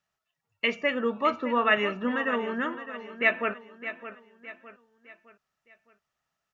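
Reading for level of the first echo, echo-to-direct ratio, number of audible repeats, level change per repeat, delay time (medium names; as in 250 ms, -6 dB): -12.5 dB, -11.5 dB, 3, -7.5 dB, 612 ms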